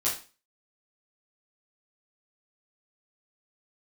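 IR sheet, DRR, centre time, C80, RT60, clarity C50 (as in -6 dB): -8.5 dB, 31 ms, 12.5 dB, 0.35 s, 6.5 dB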